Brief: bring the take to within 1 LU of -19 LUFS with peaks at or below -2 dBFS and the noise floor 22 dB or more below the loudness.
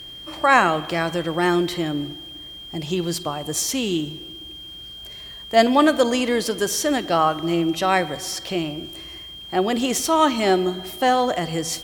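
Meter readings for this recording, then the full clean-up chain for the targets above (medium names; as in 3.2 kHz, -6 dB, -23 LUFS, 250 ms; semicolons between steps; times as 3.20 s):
steady tone 3.2 kHz; tone level -36 dBFS; loudness -21.0 LUFS; peak level -1.5 dBFS; loudness target -19.0 LUFS
-> band-stop 3.2 kHz, Q 30; trim +2 dB; peak limiter -2 dBFS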